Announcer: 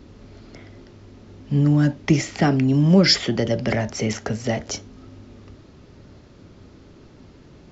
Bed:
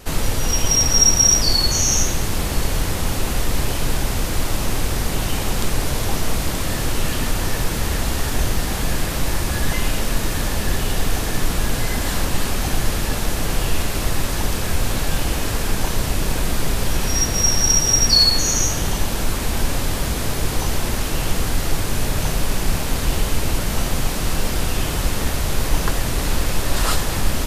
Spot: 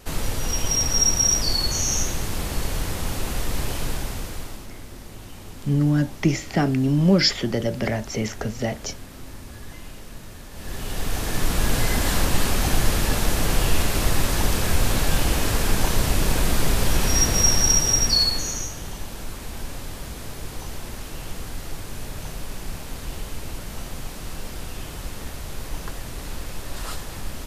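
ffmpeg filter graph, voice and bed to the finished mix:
-filter_complex "[0:a]adelay=4150,volume=-2.5dB[a];[1:a]volume=14dB,afade=t=out:st=3.8:d=0.88:silence=0.199526,afade=t=in:st=10.51:d=1.27:silence=0.105925,afade=t=out:st=17.32:d=1.39:silence=0.237137[b];[a][b]amix=inputs=2:normalize=0"

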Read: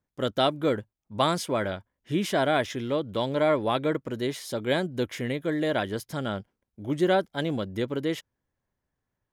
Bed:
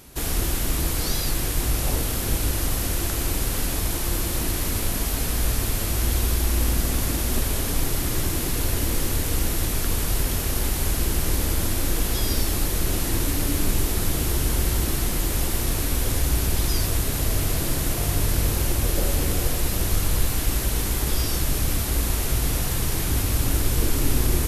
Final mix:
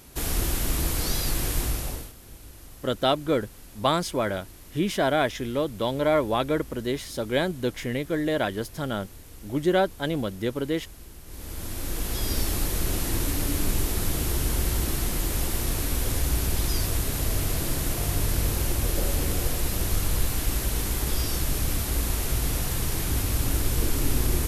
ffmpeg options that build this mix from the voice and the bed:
-filter_complex "[0:a]adelay=2650,volume=1dB[a];[1:a]volume=17dB,afade=t=out:st=1.56:d=0.57:silence=0.1,afade=t=in:st=11.26:d=1.16:silence=0.112202[b];[a][b]amix=inputs=2:normalize=0"

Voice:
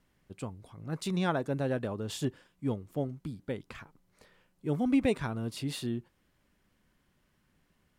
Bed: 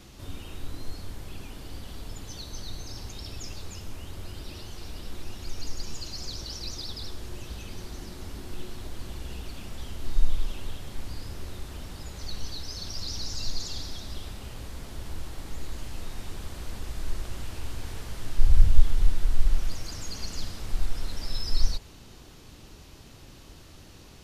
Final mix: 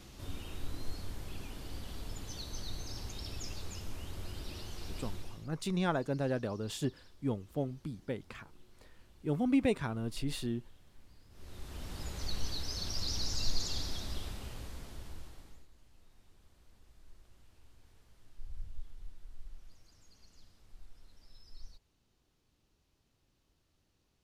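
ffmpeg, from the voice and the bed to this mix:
-filter_complex "[0:a]adelay=4600,volume=-2dB[a];[1:a]volume=18.5dB,afade=t=out:st=5.05:d=0.44:silence=0.1,afade=t=in:st=11.3:d=0.74:silence=0.0794328,afade=t=out:st=14.01:d=1.66:silence=0.0562341[b];[a][b]amix=inputs=2:normalize=0"

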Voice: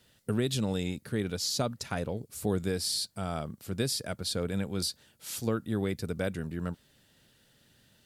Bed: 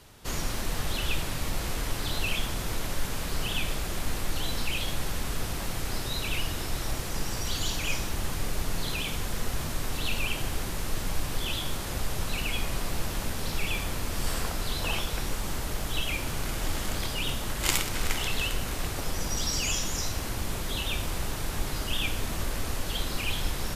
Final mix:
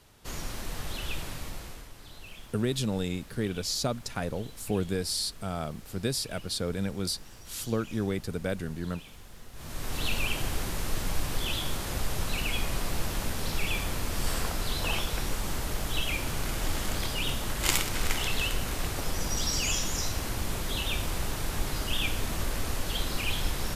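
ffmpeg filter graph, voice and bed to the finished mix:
-filter_complex "[0:a]adelay=2250,volume=0.5dB[a];[1:a]volume=12dB,afade=t=out:st=1.29:d=0.61:silence=0.251189,afade=t=in:st=9.53:d=0.5:silence=0.133352[b];[a][b]amix=inputs=2:normalize=0"

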